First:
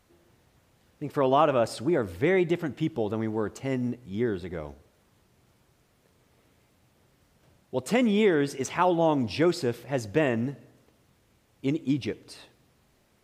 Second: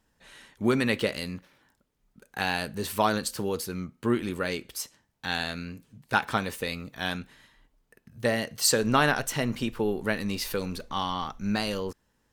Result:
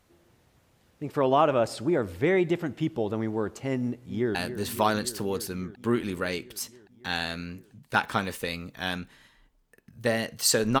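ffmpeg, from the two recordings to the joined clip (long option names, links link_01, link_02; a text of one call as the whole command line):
ffmpeg -i cue0.wav -i cue1.wav -filter_complex "[0:a]apad=whole_dur=10.8,atrim=end=10.8,atrim=end=4.352[link_01];[1:a]atrim=start=2.538:end=8.99[link_02];[link_01][link_02]acrossfade=duration=0.004:curve1=hsin:curve2=hsin,asplit=2[link_03][link_04];[link_04]afade=type=in:start_time=3.81:duration=0.01,afade=type=out:start_time=4.35:duration=0.01,aecho=0:1:280|560|840|1120|1400|1680|1960|2240|2520|2800|3080|3360:0.281838|0.225471|0.180377|0.144301|0.115441|0.0923528|0.0738822|0.0591058|0.0472846|0.0378277|0.0302622|0.0242097[link_05];[link_03][link_05]amix=inputs=2:normalize=0" out.wav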